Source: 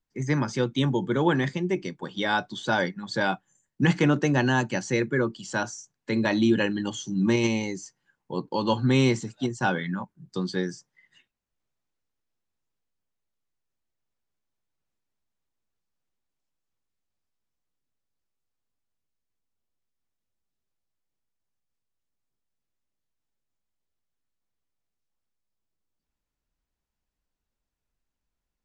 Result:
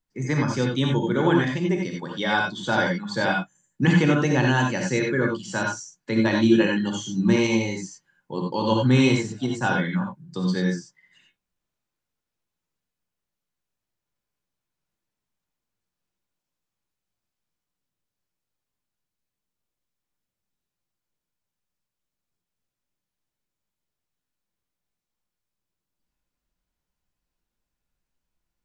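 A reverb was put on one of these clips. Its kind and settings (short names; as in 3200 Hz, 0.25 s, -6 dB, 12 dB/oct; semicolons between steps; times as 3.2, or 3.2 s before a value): non-linear reverb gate 0.11 s rising, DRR 0.5 dB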